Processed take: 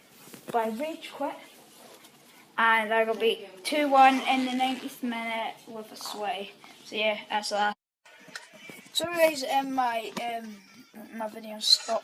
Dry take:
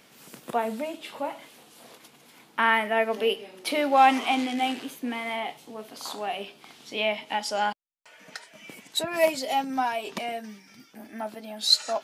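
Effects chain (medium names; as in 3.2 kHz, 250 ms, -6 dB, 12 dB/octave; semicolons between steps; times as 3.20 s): coarse spectral quantiser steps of 15 dB; Opus 128 kbps 48 kHz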